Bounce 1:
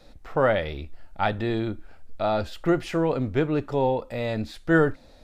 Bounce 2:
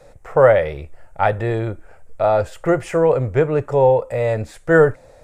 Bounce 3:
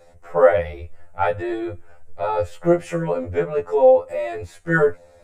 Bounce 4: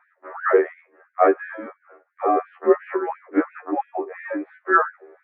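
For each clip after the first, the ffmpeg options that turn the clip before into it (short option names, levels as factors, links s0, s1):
-af "equalizer=f=125:t=o:w=1:g=10,equalizer=f=250:t=o:w=1:g=-9,equalizer=f=500:t=o:w=1:g=12,equalizer=f=1000:t=o:w=1:g=4,equalizer=f=2000:t=o:w=1:g=6,equalizer=f=4000:t=o:w=1:g=-10,equalizer=f=8000:t=o:w=1:g=12"
-af "afftfilt=real='re*2*eq(mod(b,4),0)':imag='im*2*eq(mod(b,4),0)':win_size=2048:overlap=0.75,volume=0.841"
-af "highpass=f=210:t=q:w=0.5412,highpass=f=210:t=q:w=1.307,lowpass=f=2100:t=q:w=0.5176,lowpass=f=2100:t=q:w=0.7071,lowpass=f=2100:t=q:w=1.932,afreqshift=-130,afftfilt=real='re*gte(b*sr/1024,230*pow(1500/230,0.5+0.5*sin(2*PI*2.9*pts/sr)))':imag='im*gte(b*sr/1024,230*pow(1500/230,0.5+0.5*sin(2*PI*2.9*pts/sr)))':win_size=1024:overlap=0.75,volume=1.78"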